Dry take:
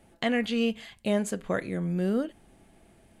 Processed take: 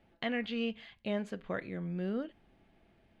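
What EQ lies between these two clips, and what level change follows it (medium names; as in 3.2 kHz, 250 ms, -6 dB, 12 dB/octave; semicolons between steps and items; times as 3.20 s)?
distance through air 320 m; treble shelf 2.2 kHz +11.5 dB; -8.0 dB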